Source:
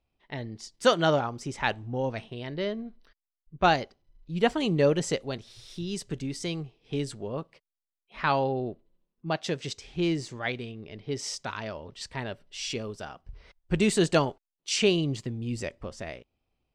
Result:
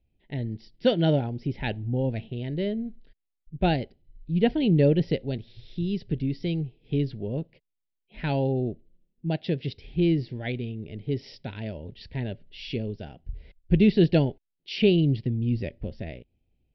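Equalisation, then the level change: brick-wall FIR low-pass 5800 Hz; low shelf 430 Hz +11.5 dB; fixed phaser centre 2800 Hz, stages 4; -2.5 dB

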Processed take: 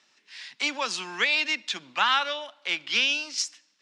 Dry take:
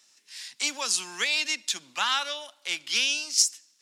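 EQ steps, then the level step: LPF 3000 Hz 12 dB/oct; +5.0 dB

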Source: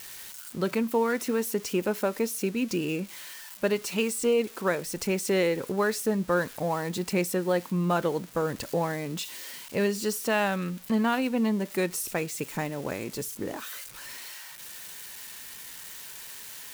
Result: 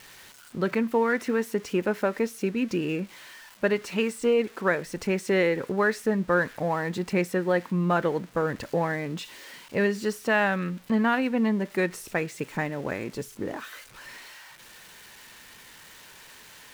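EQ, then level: dynamic EQ 1800 Hz, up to +7 dB, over -47 dBFS, Q 2.1; LPF 2500 Hz 6 dB/oct; +1.5 dB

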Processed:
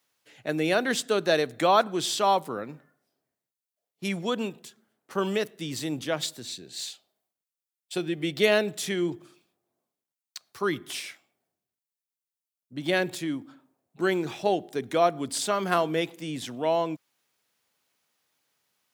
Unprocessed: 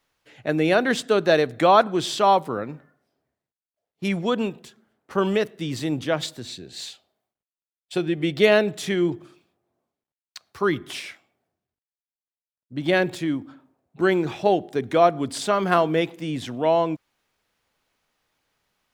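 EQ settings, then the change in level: HPF 120 Hz; high shelf 4600 Hz +11 dB; -5.5 dB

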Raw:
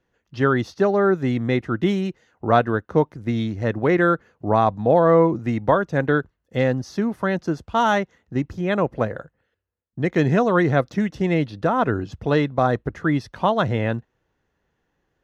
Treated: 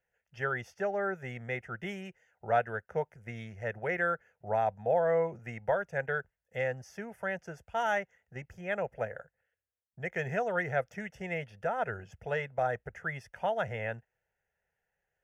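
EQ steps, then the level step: low shelf 460 Hz -10 dB; fixed phaser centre 1100 Hz, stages 6; -5.5 dB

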